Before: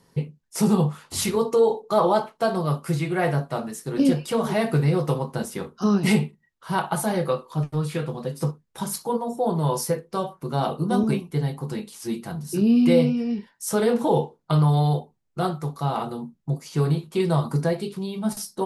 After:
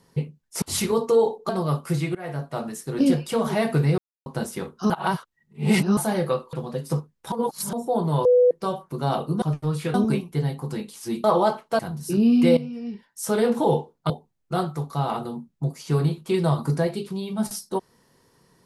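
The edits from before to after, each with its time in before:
0:00.62–0:01.06: remove
0:01.93–0:02.48: move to 0:12.23
0:03.14–0:03.66: fade in, from −21 dB
0:04.97–0:05.25: silence
0:05.89–0:06.96: reverse
0:07.52–0:08.04: move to 0:10.93
0:08.83–0:09.24: reverse
0:09.76–0:10.02: beep over 495 Hz −12.5 dBFS
0:13.01–0:13.88: fade in, from −13.5 dB
0:14.54–0:14.96: remove

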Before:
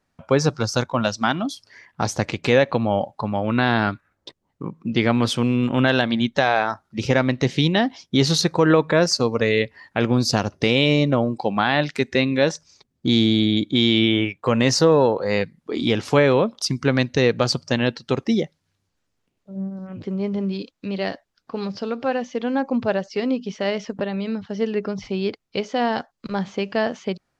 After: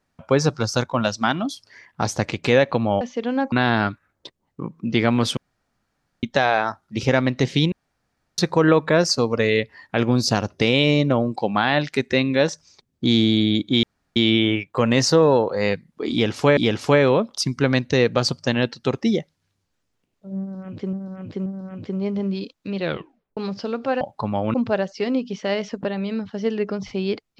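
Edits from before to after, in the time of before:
0:03.01–0:03.54: swap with 0:22.19–0:22.70
0:05.39–0:06.25: fill with room tone
0:07.74–0:08.40: fill with room tone
0:13.85: splice in room tone 0.33 s
0:15.81–0:16.26: repeat, 2 plays
0:19.64–0:20.17: repeat, 3 plays
0:20.97: tape stop 0.58 s

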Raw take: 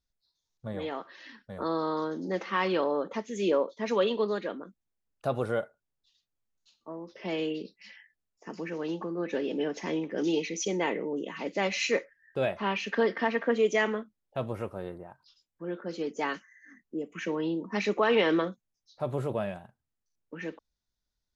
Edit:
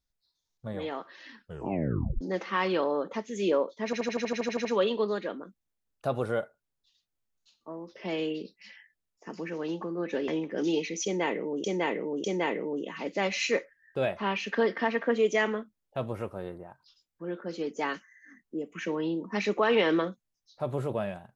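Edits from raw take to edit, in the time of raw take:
0:01.40: tape stop 0.81 s
0:03.85: stutter 0.08 s, 11 plays
0:09.48–0:09.88: remove
0:10.64–0:11.24: repeat, 3 plays

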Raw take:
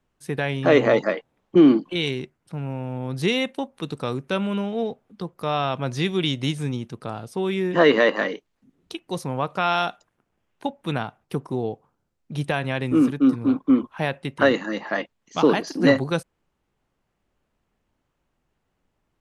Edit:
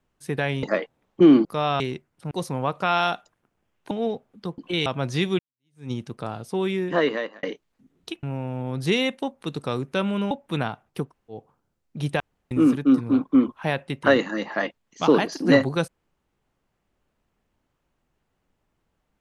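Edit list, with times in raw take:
0:00.63–0:00.98: remove
0:01.80–0:02.08: swap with 0:05.34–0:05.69
0:02.59–0:04.67: swap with 0:09.06–0:10.66
0:06.22–0:06.74: fade in exponential
0:07.47–0:08.26: fade out
0:11.41–0:11.71: fill with room tone, crossfade 0.16 s
0:12.55–0:12.86: fill with room tone

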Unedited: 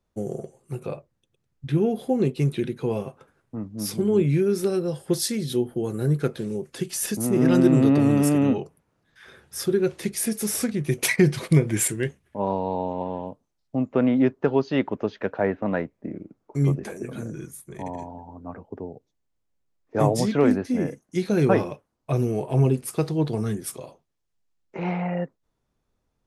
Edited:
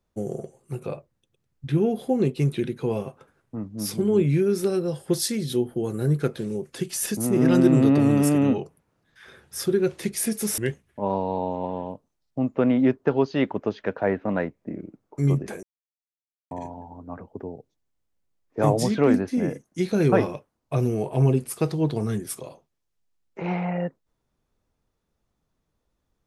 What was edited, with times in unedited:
0:10.58–0:11.95: remove
0:17.00–0:17.88: silence

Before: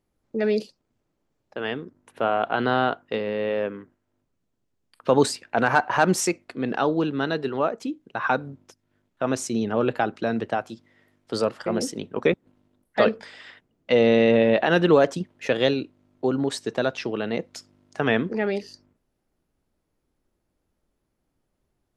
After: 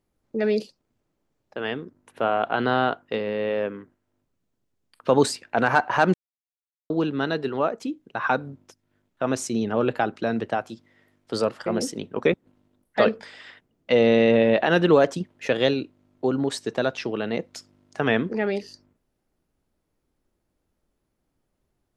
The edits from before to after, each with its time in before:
0:06.14–0:06.90: silence

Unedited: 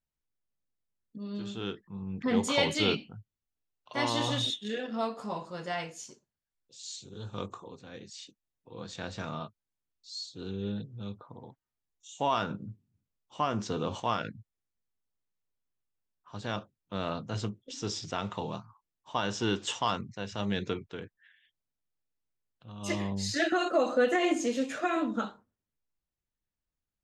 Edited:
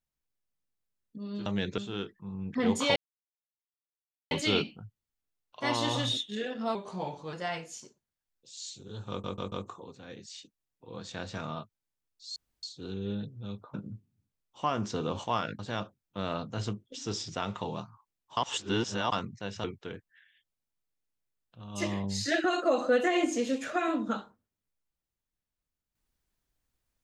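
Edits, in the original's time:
0:02.64: splice in silence 1.35 s
0:05.08–0:05.59: play speed 88%
0:07.36: stutter 0.14 s, 4 plays
0:10.20: splice in room tone 0.27 s
0:11.31–0:12.50: remove
0:14.35–0:16.35: remove
0:19.13–0:19.88: reverse
0:20.40–0:20.72: move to 0:01.46

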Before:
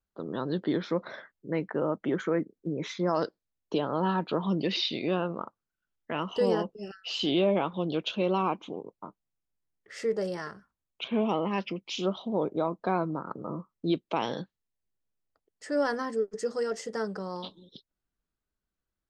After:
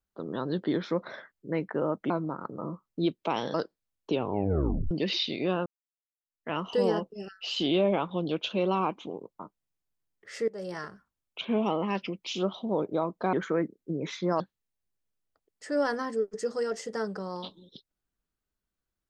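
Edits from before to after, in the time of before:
0:02.10–0:03.17: swap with 0:12.96–0:14.40
0:03.73: tape stop 0.81 s
0:05.29–0:06.13: fade in exponential
0:10.11–0:10.41: fade in, from −21 dB

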